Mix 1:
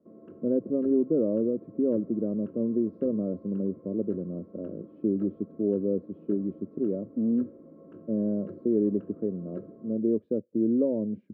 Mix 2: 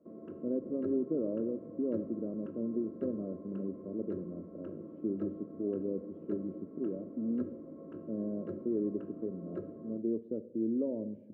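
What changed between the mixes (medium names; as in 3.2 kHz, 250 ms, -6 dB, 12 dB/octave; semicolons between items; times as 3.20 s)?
speech -10.5 dB; reverb: on, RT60 1.4 s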